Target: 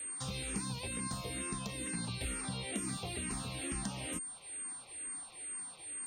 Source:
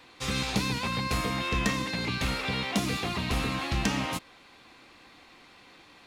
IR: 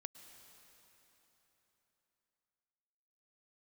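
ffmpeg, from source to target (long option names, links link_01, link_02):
-filter_complex "[0:a]acrossover=split=580|3100[link_01][link_02][link_03];[link_01]acompressor=threshold=-36dB:ratio=4[link_04];[link_02]acompressor=threshold=-47dB:ratio=4[link_05];[link_03]acompressor=threshold=-46dB:ratio=4[link_06];[link_04][link_05][link_06]amix=inputs=3:normalize=0,aeval=exprs='val(0)+0.0112*sin(2*PI*8700*n/s)':channel_layout=same,asplit=2[link_07][link_08];[link_08]afreqshift=-2.2[link_09];[link_07][link_09]amix=inputs=2:normalize=1"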